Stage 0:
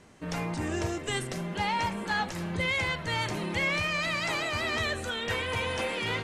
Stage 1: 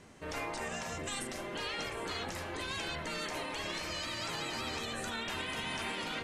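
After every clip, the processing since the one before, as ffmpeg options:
-af "bandreject=f=62.15:t=h:w=4,bandreject=f=124.3:t=h:w=4,bandreject=f=186.45:t=h:w=4,bandreject=f=248.6:t=h:w=4,bandreject=f=310.75:t=h:w=4,bandreject=f=372.9:t=h:w=4,bandreject=f=435.05:t=h:w=4,bandreject=f=497.2:t=h:w=4,bandreject=f=559.35:t=h:w=4,bandreject=f=621.5:t=h:w=4,bandreject=f=683.65:t=h:w=4,bandreject=f=745.8:t=h:w=4,bandreject=f=807.95:t=h:w=4,bandreject=f=870.1:t=h:w=4,bandreject=f=932.25:t=h:w=4,bandreject=f=994.4:t=h:w=4,bandreject=f=1.05655k:t=h:w=4,bandreject=f=1.1187k:t=h:w=4,bandreject=f=1.18085k:t=h:w=4,bandreject=f=1.243k:t=h:w=4,bandreject=f=1.30515k:t=h:w=4,bandreject=f=1.3673k:t=h:w=4,bandreject=f=1.42945k:t=h:w=4,bandreject=f=1.4916k:t=h:w=4,bandreject=f=1.55375k:t=h:w=4,bandreject=f=1.6159k:t=h:w=4,bandreject=f=1.67805k:t=h:w=4,bandreject=f=1.7402k:t=h:w=4,bandreject=f=1.80235k:t=h:w=4,afftfilt=real='re*lt(hypot(re,im),0.0891)':imag='im*lt(hypot(re,im),0.0891)':win_size=1024:overlap=0.75,alimiter=level_in=4dB:limit=-24dB:level=0:latency=1:release=76,volume=-4dB"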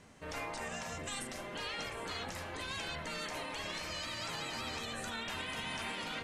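-af "equalizer=f=360:w=3.6:g=-5.5,volume=-2dB"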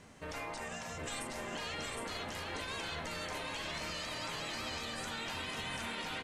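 -af "alimiter=level_in=10dB:limit=-24dB:level=0:latency=1:release=202,volume=-10dB,aecho=1:1:763:0.631,volume=2dB"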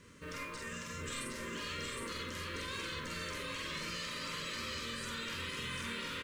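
-filter_complex "[0:a]acrusher=bits=7:mode=log:mix=0:aa=0.000001,asuperstop=centerf=750:order=8:qfactor=1.9,asplit=2[a][b];[b]adelay=47,volume=-2dB[c];[a][c]amix=inputs=2:normalize=0,volume=-2dB"

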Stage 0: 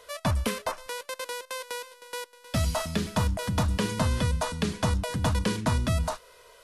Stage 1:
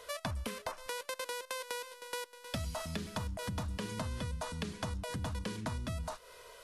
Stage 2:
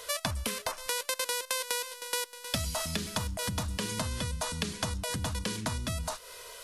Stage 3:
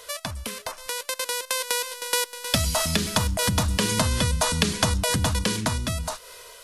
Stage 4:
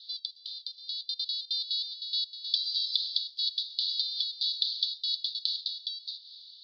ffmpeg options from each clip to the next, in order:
-af "acompressor=threshold=-36dB:ratio=6"
-af "highshelf=f=2.8k:g=10,volume=3.5dB"
-af "dynaudnorm=f=460:g=7:m=13dB"
-af "aeval=exprs='0.282*(abs(mod(val(0)/0.282+3,4)-2)-1)':c=same,asuperpass=centerf=4100:order=8:qfactor=3.3,volume=4.5dB"

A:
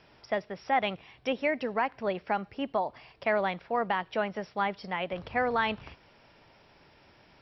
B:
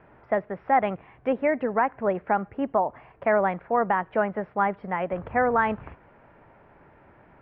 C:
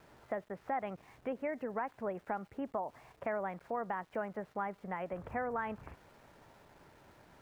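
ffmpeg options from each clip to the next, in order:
-af "lowpass=f=1.8k:w=0.5412,lowpass=f=1.8k:w=1.3066,volume=6dB"
-af "acompressor=threshold=-35dB:ratio=2,aeval=exprs='val(0)*gte(abs(val(0)),0.00158)':c=same,volume=-5.5dB"

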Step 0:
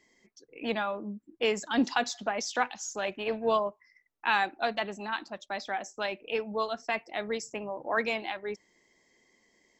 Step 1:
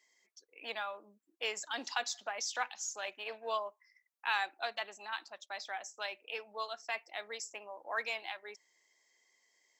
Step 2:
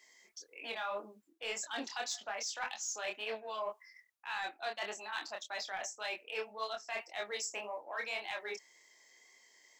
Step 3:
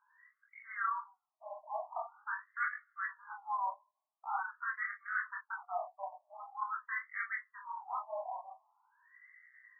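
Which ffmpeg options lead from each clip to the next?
-af "highpass=660,highshelf=f=3.8k:g=7.5,volume=-7dB"
-af "areverse,acompressor=threshold=-44dB:ratio=8,areverse,asoftclip=type=tanh:threshold=-36dB,flanger=delay=22.5:depth=4.8:speed=1.8,volume=12dB"
-af "flanger=delay=17.5:depth=6.2:speed=0.31,highpass=f=590:t=q:w=0.5412,highpass=f=590:t=q:w=1.307,lowpass=f=2.2k:t=q:w=0.5176,lowpass=f=2.2k:t=q:w=0.7071,lowpass=f=2.2k:t=q:w=1.932,afreqshift=-54,afftfilt=real='re*between(b*sr/1024,790*pow(1600/790,0.5+0.5*sin(2*PI*0.45*pts/sr))/1.41,790*pow(1600/790,0.5+0.5*sin(2*PI*0.45*pts/sr))*1.41)':imag='im*between(b*sr/1024,790*pow(1600/790,0.5+0.5*sin(2*PI*0.45*pts/sr))/1.41,790*pow(1600/790,0.5+0.5*sin(2*PI*0.45*pts/sr))*1.41)':win_size=1024:overlap=0.75,volume=10.5dB"

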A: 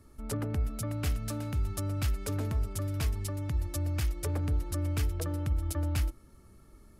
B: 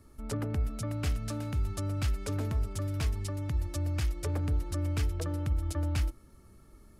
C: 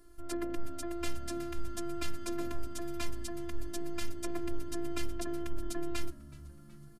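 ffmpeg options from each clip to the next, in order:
-filter_complex "[0:a]acrossover=split=9400[a][b];[b]acompressor=threshold=-54dB:ratio=4:attack=1:release=60[c];[a][c]amix=inputs=2:normalize=0"
-filter_complex "[0:a]afftfilt=real='hypot(re,im)*cos(PI*b)':imag='0':win_size=512:overlap=0.75,asplit=5[a][b][c][d][e];[b]adelay=373,afreqshift=-73,volume=-22dB[f];[c]adelay=746,afreqshift=-146,volume=-27.2dB[g];[d]adelay=1119,afreqshift=-219,volume=-32.4dB[h];[e]adelay=1492,afreqshift=-292,volume=-37.6dB[i];[a][f][g][h][i]amix=inputs=5:normalize=0,volume=3dB"

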